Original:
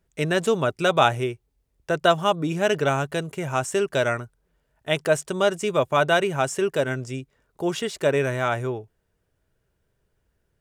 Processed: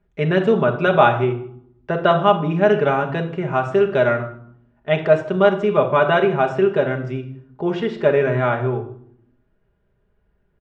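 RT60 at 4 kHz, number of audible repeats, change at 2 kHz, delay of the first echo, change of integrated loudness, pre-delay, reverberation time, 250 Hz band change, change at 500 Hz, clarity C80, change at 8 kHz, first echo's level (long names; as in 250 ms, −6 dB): 0.50 s, 1, +2.5 dB, 157 ms, +5.0 dB, 5 ms, 0.65 s, +6.0 dB, +6.0 dB, 13.5 dB, below −20 dB, −23.0 dB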